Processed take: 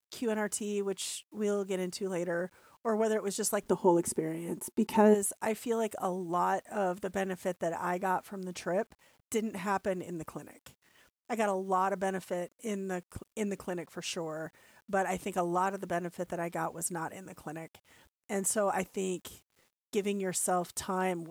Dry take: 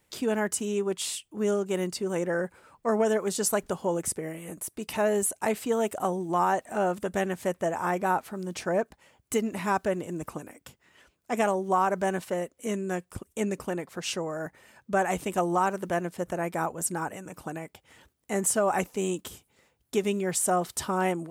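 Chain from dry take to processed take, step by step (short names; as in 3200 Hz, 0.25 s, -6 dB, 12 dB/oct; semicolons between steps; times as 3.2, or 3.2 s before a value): bit-crush 10-bit; 3.65–5.13 small resonant body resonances 240/360/880 Hz, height 12 dB -> 16 dB, ringing for 45 ms; gain -5 dB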